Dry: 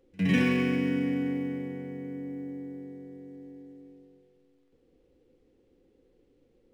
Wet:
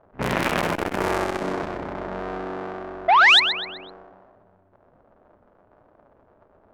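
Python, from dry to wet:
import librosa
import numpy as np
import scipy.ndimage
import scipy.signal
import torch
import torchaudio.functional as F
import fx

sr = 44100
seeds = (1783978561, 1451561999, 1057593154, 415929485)

y = fx.cycle_switch(x, sr, every=3, mode='inverted')
y = fx.env_lowpass(y, sr, base_hz=1500.0, full_db=-23.5)
y = fx.band_shelf(y, sr, hz=1000.0, db=8.0, octaves=1.7)
y = fx.spec_paint(y, sr, seeds[0], shape='rise', start_s=3.08, length_s=0.32, low_hz=640.0, high_hz=4300.0, level_db=-17.0)
y = fx.echo_feedback(y, sr, ms=126, feedback_pct=40, wet_db=-9.5)
y = fx.transformer_sat(y, sr, knee_hz=2600.0)
y = y * 10.0 ** (4.5 / 20.0)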